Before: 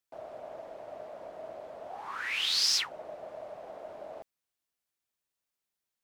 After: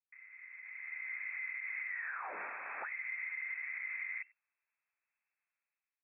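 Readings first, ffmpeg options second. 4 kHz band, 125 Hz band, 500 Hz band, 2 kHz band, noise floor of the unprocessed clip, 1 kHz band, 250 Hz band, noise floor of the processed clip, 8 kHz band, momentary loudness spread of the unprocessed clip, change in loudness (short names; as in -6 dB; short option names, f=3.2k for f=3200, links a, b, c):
under -40 dB, n/a, -17.0 dB, +3.0 dB, under -85 dBFS, -5.0 dB, under -10 dB, under -85 dBFS, under -40 dB, 20 LU, -11.5 dB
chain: -filter_complex "[0:a]lowpass=f=2.2k:t=q:w=0.5098,lowpass=f=2.2k:t=q:w=0.6013,lowpass=f=2.2k:t=q:w=0.9,lowpass=f=2.2k:t=q:w=2.563,afreqshift=-2600,aderivative,asplit=2[a][b];[b]adelay=93.29,volume=-28dB,highshelf=f=4k:g=-2.1[c];[a][c]amix=inputs=2:normalize=0,alimiter=level_in=28dB:limit=-24dB:level=0:latency=1:release=135,volume=-28dB,afreqshift=92,dynaudnorm=f=330:g=5:m=15dB,volume=4dB"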